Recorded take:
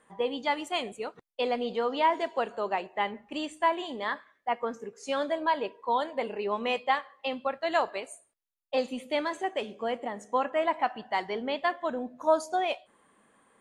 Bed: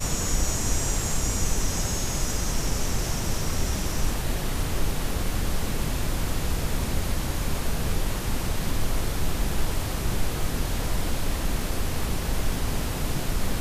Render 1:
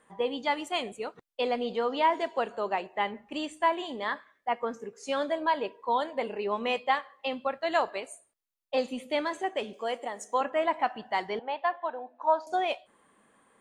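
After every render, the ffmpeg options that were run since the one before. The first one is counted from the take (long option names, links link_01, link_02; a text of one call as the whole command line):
ffmpeg -i in.wav -filter_complex "[0:a]asettb=1/sr,asplit=3[link_01][link_02][link_03];[link_01]atrim=end=9.734[link_04];[link_02]atrim=start=9.73:end=10.41,asetpts=PTS-STARTPTS,afade=type=in:duration=0.004:curve=qsin,afade=type=out:start_time=0.676:duration=0.004:curve=qsin,bass=frequency=250:gain=-14,treble=frequency=4000:gain=10[link_05];[link_03]atrim=start=10.406[link_06];[link_04][link_05]acrossfade=duration=0.004:curve1=hsin:curve2=qsin[link_07];[link_07][link_06]acrossfade=duration=0.004:curve1=qsin:curve2=hsin,asettb=1/sr,asplit=3[link_08][link_09][link_10];[link_08]atrim=end=11.394[link_11];[link_09]atrim=start=11.39:end=12.47,asetpts=PTS-STARTPTS,afade=type=in:duration=0.004:curve=qsin,afade=type=out:start_time=1.076:duration=0.004:curve=qsin,highpass=frequency=400:width=0.5412,highpass=frequency=400:width=1.3066,equalizer=frequency=420:width_type=q:width=4:gain=-8,equalizer=frequency=600:width_type=q:width=4:gain=-5,equalizer=frequency=850:width_type=q:width=4:gain=9,equalizer=frequency=1300:width_type=q:width=4:gain=-4,equalizer=frequency=2100:width_type=q:width=4:gain=-7,equalizer=frequency=3300:width_type=q:width=4:gain=-7,lowpass=frequency=3600:width=0.5412,lowpass=frequency=3600:width=1.3066[link_12];[link_10]atrim=start=12.466[link_13];[link_11][link_12]acrossfade=duration=0.004:curve1=hsin:curve2=qsin[link_14];[link_14][link_13]acrossfade=duration=0.004:curve1=qsin:curve2=hsin" out.wav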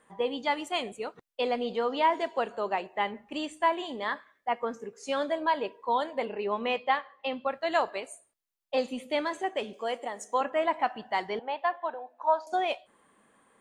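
ffmpeg -i in.wav -filter_complex "[0:a]asettb=1/sr,asplit=3[link_01][link_02][link_03];[link_01]atrim=end=6.254[link_04];[link_02]atrim=start=6.25:end=7.48,asetpts=PTS-STARTPTS,afade=type=in:duration=0.004:curve=qsin,afade=type=out:start_time=1.226:duration=0.004:curve=qsin,lowpass=4300[link_05];[link_03]atrim=start=7.476[link_06];[link_04][link_05]acrossfade=duration=0.004:curve1=hsin:curve2=qsin[link_07];[link_07][link_06]acrossfade=duration=0.004:curve1=qsin:curve2=hsin,asettb=1/sr,asplit=3[link_08][link_09][link_10];[link_08]atrim=end=11.944[link_11];[link_09]atrim=start=11.94:end=12.53,asetpts=PTS-STARTPTS,afade=type=in:duration=0.004:curve=qsin,afade=type=out:start_time=0.586:duration=0.004:curve=qsin,highpass=410[link_12];[link_10]atrim=start=12.526[link_13];[link_11][link_12]acrossfade=duration=0.004:curve1=hsin:curve2=qsin[link_14];[link_14][link_13]acrossfade=duration=0.004:curve1=qsin:curve2=hsin" out.wav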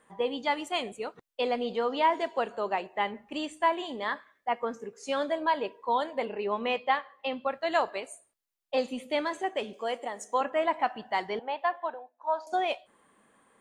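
ffmpeg -i in.wav -filter_complex "[0:a]asplit=3[link_01][link_02][link_03];[link_01]atrim=end=12.13,asetpts=PTS-STARTPTS,afade=type=out:start_time=11.8:duration=0.33:curve=qsin:silence=0.177828[link_04];[link_02]atrim=start=12.13:end=12.19,asetpts=PTS-STARTPTS,volume=-15dB[link_05];[link_03]atrim=start=12.19,asetpts=PTS-STARTPTS,afade=type=in:duration=0.33:curve=qsin:silence=0.177828[link_06];[link_04][link_05][link_06]concat=n=3:v=0:a=1" out.wav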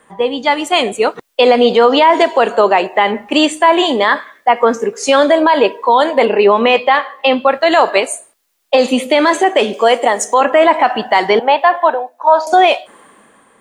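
ffmpeg -i in.wav -filter_complex "[0:a]acrossover=split=220[link_01][link_02];[link_02]dynaudnorm=framelen=180:gausssize=9:maxgain=11dB[link_03];[link_01][link_03]amix=inputs=2:normalize=0,alimiter=level_in=13.5dB:limit=-1dB:release=50:level=0:latency=1" out.wav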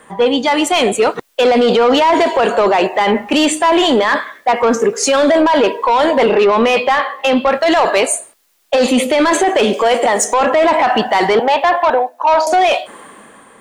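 ffmpeg -i in.wav -af "acontrast=74,alimiter=limit=-6dB:level=0:latency=1:release=12" out.wav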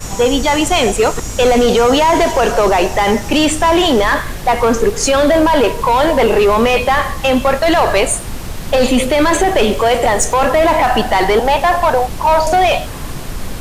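ffmpeg -i in.wav -i bed.wav -filter_complex "[1:a]volume=2dB[link_01];[0:a][link_01]amix=inputs=2:normalize=0" out.wav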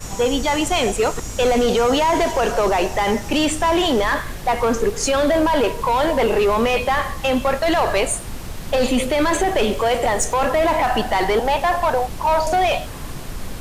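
ffmpeg -i in.wav -af "volume=-6dB" out.wav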